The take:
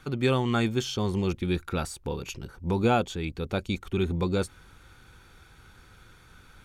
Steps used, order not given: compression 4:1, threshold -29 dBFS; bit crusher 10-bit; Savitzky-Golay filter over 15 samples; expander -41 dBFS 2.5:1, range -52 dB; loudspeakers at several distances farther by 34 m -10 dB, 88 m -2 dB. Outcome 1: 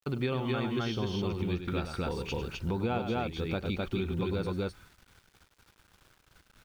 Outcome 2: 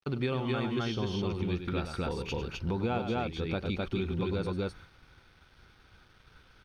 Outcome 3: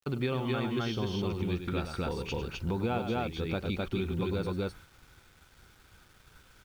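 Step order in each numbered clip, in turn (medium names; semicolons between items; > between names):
expander > Savitzky-Golay filter > bit crusher > loudspeakers at several distances > compression; loudspeakers at several distances > expander > compression > bit crusher > Savitzky-Golay filter; loudspeakers at several distances > compression > expander > Savitzky-Golay filter > bit crusher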